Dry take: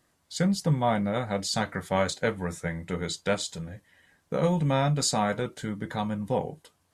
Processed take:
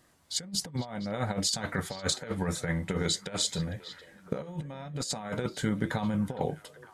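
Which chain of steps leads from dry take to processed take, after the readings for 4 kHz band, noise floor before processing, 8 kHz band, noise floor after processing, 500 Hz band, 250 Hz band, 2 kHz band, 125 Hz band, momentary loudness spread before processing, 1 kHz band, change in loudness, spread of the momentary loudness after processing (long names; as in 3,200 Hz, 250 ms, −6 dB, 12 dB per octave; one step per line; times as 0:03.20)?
+1.5 dB, −71 dBFS, +1.0 dB, −57 dBFS, −7.0 dB, −4.0 dB, −4.0 dB, −5.0 dB, 10 LU, −8.5 dB, −4.0 dB, 10 LU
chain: compressor whose output falls as the input rises −31 dBFS, ratio −0.5
echo through a band-pass that steps 460 ms, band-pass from 3,300 Hz, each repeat −1.4 octaves, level −12 dB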